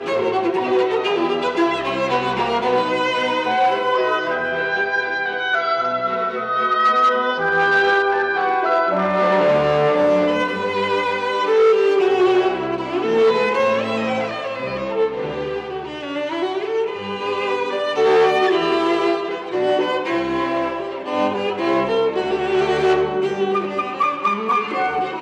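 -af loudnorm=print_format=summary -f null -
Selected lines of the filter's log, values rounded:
Input Integrated:    -19.0 LUFS
Input True Peak:      -5.2 dBTP
Input LRA:             3.5 LU
Input Threshold:     -29.0 LUFS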